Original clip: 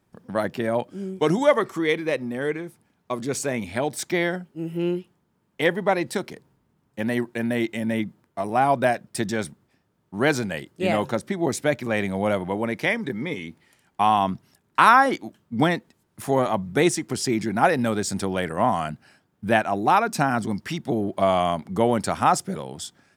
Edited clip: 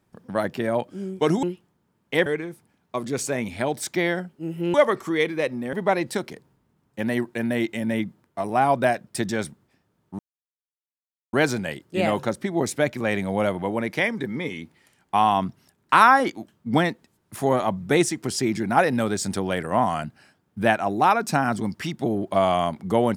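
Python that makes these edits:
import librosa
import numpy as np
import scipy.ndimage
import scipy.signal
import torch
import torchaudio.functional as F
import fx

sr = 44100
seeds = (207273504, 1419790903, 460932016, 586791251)

y = fx.edit(x, sr, fx.swap(start_s=1.43, length_s=0.99, other_s=4.9, other_length_s=0.83),
    fx.insert_silence(at_s=10.19, length_s=1.14), tone=tone)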